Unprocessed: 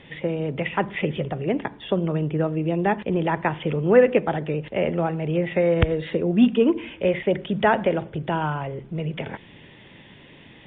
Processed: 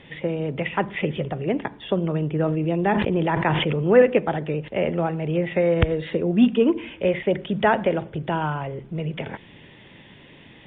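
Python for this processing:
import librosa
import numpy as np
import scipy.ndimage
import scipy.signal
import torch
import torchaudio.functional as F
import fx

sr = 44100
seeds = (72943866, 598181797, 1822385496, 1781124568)

y = fx.sustainer(x, sr, db_per_s=29.0, at=(2.31, 4.02))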